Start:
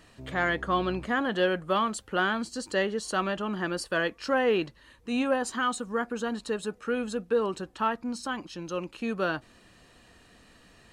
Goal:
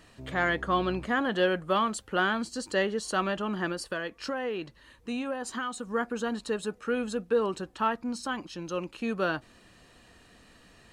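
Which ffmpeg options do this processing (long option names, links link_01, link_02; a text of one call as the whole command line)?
ffmpeg -i in.wav -filter_complex "[0:a]asettb=1/sr,asplit=3[link_01][link_02][link_03];[link_01]atrim=end=3.714[link_04];[link_02]atrim=start=3.71:end=5.89,asetpts=PTS-STARTPTS,afade=type=in:duration=0.004:curve=qsin,afade=type=out:start_time=2.176:duration=0.004:curve=qsin,acompressor=threshold=-30dB:ratio=6[link_05];[link_03]atrim=start=5.886[link_06];[link_04][link_05]acrossfade=duration=0.004:curve1=hsin:curve2=qsin[link_07];[link_07][link_06]acrossfade=duration=0.004:curve1=qsin:curve2=hsin" out.wav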